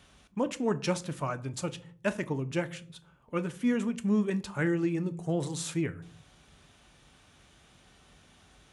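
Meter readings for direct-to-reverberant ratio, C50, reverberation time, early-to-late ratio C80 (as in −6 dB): 11.0 dB, 20.0 dB, 0.50 s, 24.0 dB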